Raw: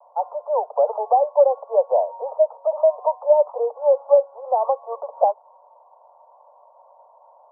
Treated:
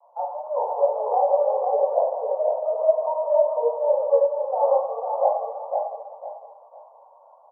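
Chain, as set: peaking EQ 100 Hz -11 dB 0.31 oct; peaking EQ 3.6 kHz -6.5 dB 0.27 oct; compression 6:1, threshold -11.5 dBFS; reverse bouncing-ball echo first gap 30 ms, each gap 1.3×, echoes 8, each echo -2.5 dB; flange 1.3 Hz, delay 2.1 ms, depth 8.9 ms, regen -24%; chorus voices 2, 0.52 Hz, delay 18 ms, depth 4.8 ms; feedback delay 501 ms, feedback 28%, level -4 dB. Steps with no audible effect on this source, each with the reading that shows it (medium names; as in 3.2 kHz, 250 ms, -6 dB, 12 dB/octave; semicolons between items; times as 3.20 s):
peaking EQ 100 Hz: input has nothing below 430 Hz; peaking EQ 3.6 kHz: input has nothing above 1.1 kHz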